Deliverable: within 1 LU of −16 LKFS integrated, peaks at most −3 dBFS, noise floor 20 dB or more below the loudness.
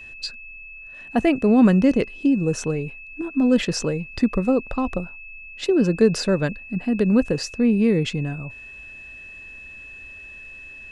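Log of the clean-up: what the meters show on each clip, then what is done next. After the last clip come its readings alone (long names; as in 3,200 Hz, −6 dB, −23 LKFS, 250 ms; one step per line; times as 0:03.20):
interfering tone 2,600 Hz; level of the tone −38 dBFS; integrated loudness −21.0 LKFS; sample peak −5.0 dBFS; target loudness −16.0 LKFS
→ notch filter 2,600 Hz, Q 30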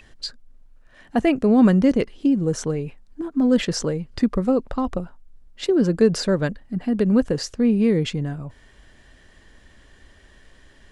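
interfering tone none found; integrated loudness −21.0 LKFS; sample peak −5.0 dBFS; target loudness −16.0 LKFS
→ level +5 dB
brickwall limiter −3 dBFS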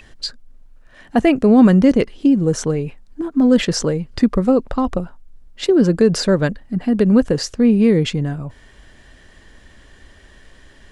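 integrated loudness −16.5 LKFS; sample peak −3.0 dBFS; background noise floor −48 dBFS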